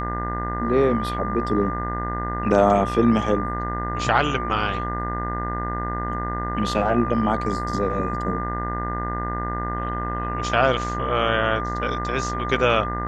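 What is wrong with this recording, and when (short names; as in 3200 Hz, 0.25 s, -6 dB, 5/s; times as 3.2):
buzz 60 Hz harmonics 34 -29 dBFS
tone 1200 Hz -28 dBFS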